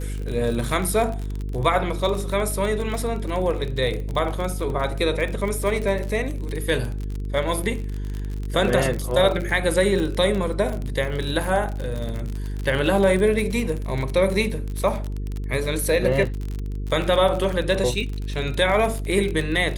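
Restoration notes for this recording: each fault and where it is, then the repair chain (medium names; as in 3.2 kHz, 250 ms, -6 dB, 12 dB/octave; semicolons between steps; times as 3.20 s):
buzz 50 Hz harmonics 9 -28 dBFS
crackle 40 per s -26 dBFS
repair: de-click; de-hum 50 Hz, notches 9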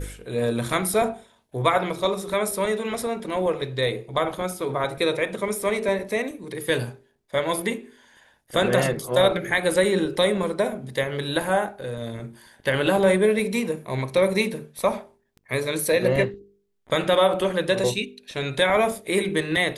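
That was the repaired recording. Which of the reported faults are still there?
nothing left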